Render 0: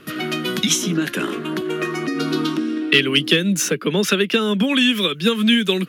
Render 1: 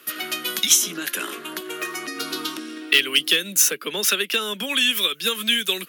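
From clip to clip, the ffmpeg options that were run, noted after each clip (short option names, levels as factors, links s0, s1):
-af "highpass=f=510:p=1,aemphasis=mode=production:type=bsi,volume=0.668"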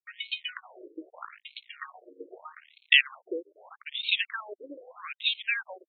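-af "aeval=exprs='sgn(val(0))*max(abs(val(0))-0.0299,0)':c=same,afftfilt=real='re*between(b*sr/1024,390*pow(3100/390,0.5+0.5*sin(2*PI*0.8*pts/sr))/1.41,390*pow(3100/390,0.5+0.5*sin(2*PI*0.8*pts/sr))*1.41)':imag='im*between(b*sr/1024,390*pow(3100/390,0.5+0.5*sin(2*PI*0.8*pts/sr))/1.41,390*pow(3100/390,0.5+0.5*sin(2*PI*0.8*pts/sr))*1.41)':win_size=1024:overlap=0.75"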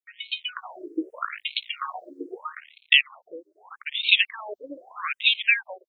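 -filter_complex "[0:a]dynaudnorm=f=220:g=5:m=5.96,asplit=2[s0][s1];[s1]afreqshift=0.74[s2];[s0][s2]amix=inputs=2:normalize=1"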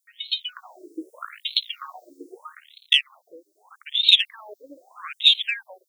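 -af "aexciter=amount=13.4:drive=4.3:freq=3700,volume=0.501"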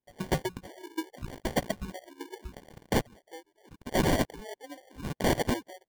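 -af "aresample=11025,aeval=exprs='(mod(7.94*val(0)+1,2)-1)/7.94':c=same,aresample=44100,acrusher=samples=34:mix=1:aa=0.000001"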